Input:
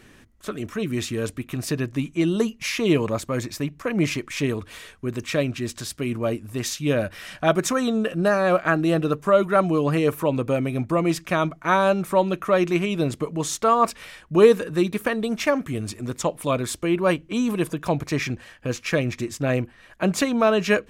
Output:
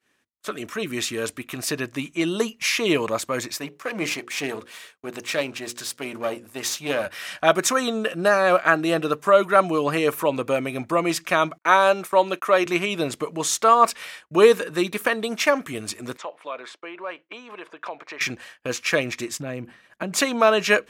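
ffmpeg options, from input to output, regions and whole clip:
ffmpeg -i in.wav -filter_complex "[0:a]asettb=1/sr,asplit=3[link_01][link_02][link_03];[link_01]atrim=end=3.594[link_04];[link_02]atrim=start=3.59:end=7.06,asetpts=PTS-STARTPTS,afade=type=in:duration=0.004:curve=qsin,afade=type=out:start_time=3.466:duration=0.004:curve=qsin,aeval=exprs='if(lt(val(0),0),0.447*val(0),val(0))':channel_layout=same,highpass=97,bandreject=frequency=60:width_type=h:width=6,bandreject=frequency=120:width_type=h:width=6,bandreject=frequency=180:width_type=h:width=6,bandreject=frequency=240:width_type=h:width=6,bandreject=frequency=300:width_type=h:width=6,bandreject=frequency=360:width_type=h:width=6,bandreject=frequency=420:width_type=h:width=6,bandreject=frequency=480:width_type=h:width=6,bandreject=frequency=540:width_type=h:width=6[link_05];[link_03]atrim=start=7.056[link_06];[link_04][link_05]acrossfade=duration=0.004:curve1=hsin:curve2=qsin[link_07];[link_07][link_06]acrossfade=duration=0.004:curve1=qsin:curve2=hsin,asettb=1/sr,asplit=3[link_08][link_09][link_10];[link_08]atrim=end=11.584[link_11];[link_09]atrim=start=11.58:end=12.66,asetpts=PTS-STARTPTS,afade=type=in:duration=0.004:curve=qsin,afade=type=out:start_time=1.076:duration=0.004:curve=qsin,highpass=230,agate=range=-41dB:threshold=-38dB:ratio=16:release=100:detection=peak[link_12];[link_10]atrim=start=12.656[link_13];[link_11][link_12]acrossfade=duration=0.004:curve1=hsin:curve2=qsin[link_14];[link_14][link_13]acrossfade=duration=0.004:curve1=qsin:curve2=hsin,asettb=1/sr,asplit=3[link_15][link_16][link_17];[link_15]atrim=end=16.174[link_18];[link_16]atrim=start=16.17:end=18.21,asetpts=PTS-STARTPTS,afade=type=in:duration=0.004:curve=qsin,afade=type=out:start_time=2.036:duration=0.004:curve=qsin,acompressor=threshold=-27dB:ratio=6:attack=3.2:release=140:knee=1:detection=peak,highpass=500,lowpass=2600[link_19];[link_17]atrim=start=18.206[link_20];[link_18][link_19]acrossfade=duration=0.004:curve1=hsin:curve2=qsin[link_21];[link_21][link_20]acrossfade=duration=0.004:curve1=qsin:curve2=hsin,asettb=1/sr,asplit=3[link_22][link_23][link_24];[link_22]atrim=end=19.394[link_25];[link_23]atrim=start=19.39:end=20.13,asetpts=PTS-STARTPTS,afade=type=in:duration=0.004:curve=qsin,afade=type=out:start_time=0.736:duration=0.004:curve=qsin,equalizer=frequency=160:width_type=o:width=2.2:gain=12.5,acompressor=threshold=-24dB:ratio=5:attack=3.2:release=140:knee=1:detection=peak[link_26];[link_24]atrim=start=20.126[link_27];[link_25][link_26]acrossfade=duration=0.004:curve1=hsin:curve2=qsin[link_28];[link_28][link_27]acrossfade=duration=0.004:curve1=qsin:curve2=hsin,highpass=frequency=180:poles=1,agate=range=-33dB:threshold=-40dB:ratio=3:detection=peak,lowshelf=frequency=370:gain=-11,volume=5dB" out.wav

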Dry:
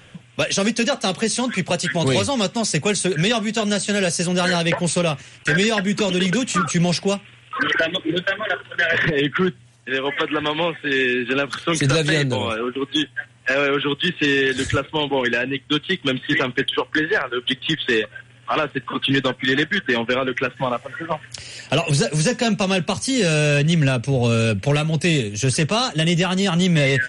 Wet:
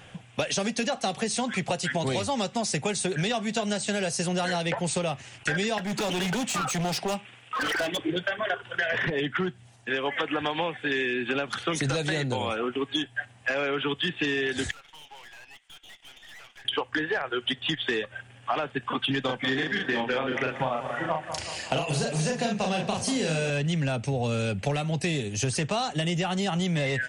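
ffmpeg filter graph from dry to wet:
ffmpeg -i in.wav -filter_complex "[0:a]asettb=1/sr,asplit=3[link_01][link_02][link_03];[link_01]atrim=end=5.784[link_04];[link_02]atrim=start=5.78:end=7.99,asetpts=PTS-STARTPTS,afade=type=in:duration=0.004:curve=qsin,afade=type=out:start_time=2.206:duration=0.004:curve=qsin,highpass=160,asoftclip=type=hard:threshold=-22.5dB[link_05];[link_03]atrim=start=7.986[link_06];[link_04][link_05]acrossfade=duration=0.004:curve1=hsin:curve2=qsin[link_07];[link_07][link_06]acrossfade=duration=0.004:curve1=qsin:curve2=hsin,asettb=1/sr,asplit=3[link_08][link_09][link_10];[link_08]atrim=end=14.714[link_11];[link_09]atrim=start=14.71:end=16.65,asetpts=PTS-STARTPTS,afade=type=in:duration=0.004:curve=qsin,afade=type=out:start_time=1.936:duration=0.004:curve=qsin,highpass=1500,acompressor=threshold=-40dB:ratio=2.5:attack=3.2:release=140:knee=1:detection=peak,aeval=exprs='(tanh(141*val(0)+0.7)-tanh(0.7))/141':channel_layout=same[link_12];[link_10]atrim=start=16.646[link_13];[link_11][link_12]acrossfade=duration=0.004:curve1=hsin:curve2=qsin[link_14];[link_14][link_13]acrossfade=duration=0.004:curve1=qsin:curve2=hsin,asettb=1/sr,asplit=3[link_15][link_16][link_17];[link_15]atrim=end=19.254[link_18];[link_16]atrim=start=19.25:end=23.5,asetpts=PTS-STARTPTS,afade=type=in:duration=0.004:curve=qsin,afade=type=out:start_time=4.246:duration=0.004:curve=qsin,asplit=2[link_19][link_20];[link_20]adelay=38,volume=-2.5dB[link_21];[link_19][link_21]amix=inputs=2:normalize=0,atrim=end_sample=187425,asplit=2[link_22][link_23];[link_23]adelay=185,lowpass=frequency=5000:poles=1,volume=-13dB,asplit=2[link_24][link_25];[link_25]adelay=185,lowpass=frequency=5000:poles=1,volume=0.53,asplit=2[link_26][link_27];[link_27]adelay=185,lowpass=frequency=5000:poles=1,volume=0.53,asplit=2[link_28][link_29];[link_29]adelay=185,lowpass=frequency=5000:poles=1,volume=0.53,asplit=2[link_30][link_31];[link_31]adelay=185,lowpass=frequency=5000:poles=1,volume=0.53[link_32];[link_22][link_24][link_26][link_28][link_30][link_32]amix=inputs=6:normalize=0,atrim=end_sample=187425[link_33];[link_17]atrim=start=23.496[link_34];[link_18][link_33]acrossfade=duration=0.004:curve1=hsin:curve2=qsin[link_35];[link_35][link_34]acrossfade=duration=0.004:curve1=qsin:curve2=hsin,equalizer=frequency=770:width=3.2:gain=8.5,acompressor=threshold=-22dB:ratio=6,volume=-2.5dB" out.wav

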